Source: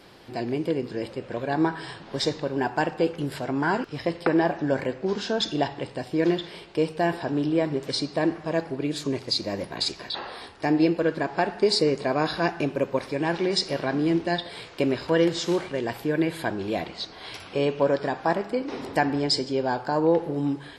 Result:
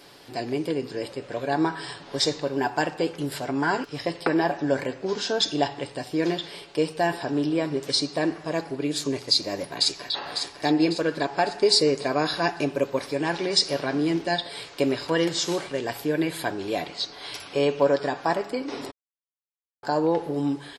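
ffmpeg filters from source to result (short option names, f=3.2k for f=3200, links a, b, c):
-filter_complex "[0:a]asplit=2[a][b];[b]afade=t=in:st=9.7:d=0.01,afade=t=out:st=10.16:d=0.01,aecho=0:1:550|1100|1650|2200|2750|3300:0.446684|0.223342|0.111671|0.0558354|0.0279177|0.0139589[c];[a][c]amix=inputs=2:normalize=0,asplit=3[d][e][f];[d]atrim=end=18.91,asetpts=PTS-STARTPTS,afade=t=out:st=18.906:d=0.004:c=hsin[g];[e]atrim=start=18.91:end=19.83,asetpts=PTS-STARTPTS,volume=0[h];[f]atrim=start=19.83,asetpts=PTS-STARTPTS,afade=t=in:d=0.004:c=hsin[i];[g][h][i]concat=n=3:v=0:a=1,bass=f=250:g=-5,treble=f=4k:g=7,aecho=1:1:7:0.35"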